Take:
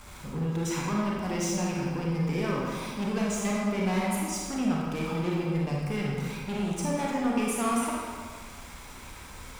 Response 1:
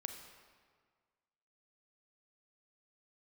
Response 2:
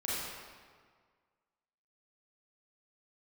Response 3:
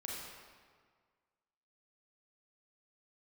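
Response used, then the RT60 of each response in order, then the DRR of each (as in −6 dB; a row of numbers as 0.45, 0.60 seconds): 3; 1.7, 1.7, 1.7 seconds; 5.0, −8.5, −4.0 decibels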